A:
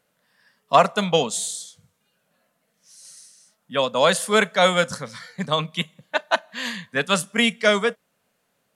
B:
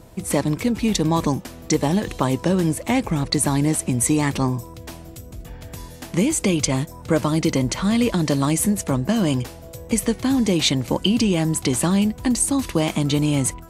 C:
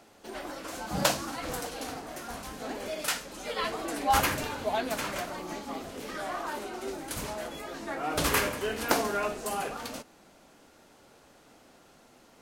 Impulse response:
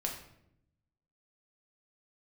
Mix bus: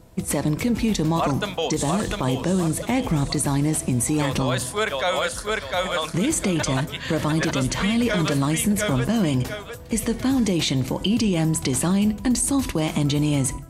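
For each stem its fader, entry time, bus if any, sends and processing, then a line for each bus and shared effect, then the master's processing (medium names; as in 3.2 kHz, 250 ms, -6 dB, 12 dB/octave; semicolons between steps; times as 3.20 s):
-2.5 dB, 0.45 s, no send, echo send -4 dB, high-pass 290 Hz
+0.5 dB, 0.00 s, send -16 dB, no echo send, bass shelf 200 Hz +2.5 dB; gate -28 dBFS, range -7 dB
-16.0 dB, 0.00 s, no send, no echo send, none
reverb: on, RT60 0.75 s, pre-delay 5 ms
echo: feedback delay 702 ms, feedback 36%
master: peak limiter -13.5 dBFS, peak gain reduction 9.5 dB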